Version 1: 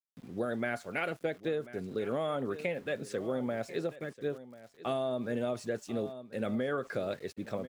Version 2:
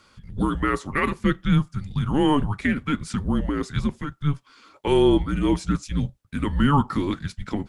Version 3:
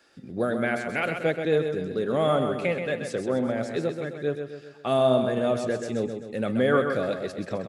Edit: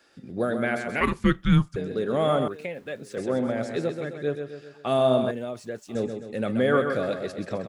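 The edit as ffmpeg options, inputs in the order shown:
-filter_complex "[0:a]asplit=2[a][b];[2:a]asplit=4[c][d][e][f];[c]atrim=end=1.012[g];[1:a]atrim=start=1.008:end=1.762[h];[d]atrim=start=1.758:end=2.482[i];[a]atrim=start=2.478:end=3.172[j];[e]atrim=start=3.168:end=5.312[k];[b]atrim=start=5.308:end=5.952[l];[f]atrim=start=5.948[m];[g][h]acrossfade=d=0.004:c1=hsin:c2=hsin[n];[n][i]acrossfade=d=0.004:c1=hsin:c2=hsin[o];[o][j]acrossfade=d=0.004:c1=hsin:c2=hsin[p];[p][k]acrossfade=d=0.004:c1=hsin:c2=hsin[q];[q][l]acrossfade=d=0.004:c1=hsin:c2=hsin[r];[r][m]acrossfade=d=0.004:c1=hsin:c2=hsin"

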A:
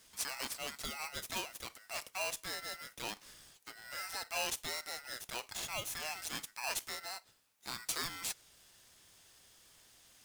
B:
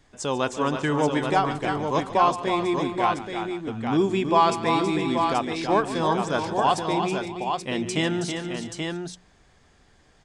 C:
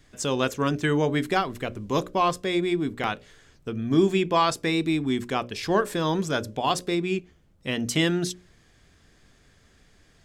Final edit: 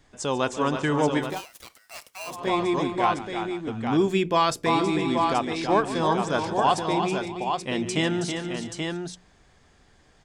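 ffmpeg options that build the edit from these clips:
-filter_complex "[1:a]asplit=3[a][b][c];[a]atrim=end=1.42[d];[0:a]atrim=start=1.18:end=2.49[e];[b]atrim=start=2.25:end=4.082[f];[2:a]atrim=start=4.078:end=4.662[g];[c]atrim=start=4.658[h];[d][e]acrossfade=d=0.24:c1=tri:c2=tri[i];[i][f]acrossfade=d=0.24:c1=tri:c2=tri[j];[j][g]acrossfade=d=0.004:c1=hsin:c2=hsin[k];[k][h]acrossfade=d=0.004:c1=hsin:c2=hsin"

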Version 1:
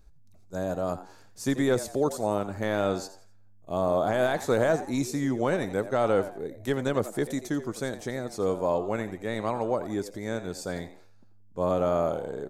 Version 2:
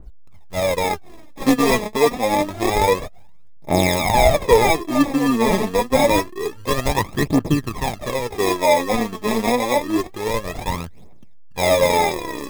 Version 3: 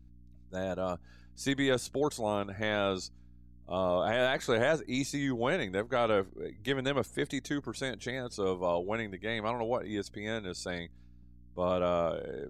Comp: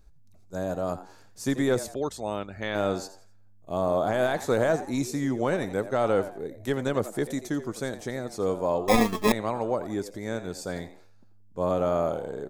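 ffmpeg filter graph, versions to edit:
-filter_complex "[0:a]asplit=3[a][b][c];[a]atrim=end=1.942[d];[2:a]atrim=start=1.938:end=2.752[e];[b]atrim=start=2.748:end=8.882[f];[1:a]atrim=start=8.878:end=9.322[g];[c]atrim=start=9.318[h];[d][e]acrossfade=d=0.004:c1=hsin:c2=hsin[i];[i][f]acrossfade=d=0.004:c1=hsin:c2=hsin[j];[j][g]acrossfade=d=0.004:c1=hsin:c2=hsin[k];[k][h]acrossfade=d=0.004:c1=hsin:c2=hsin"

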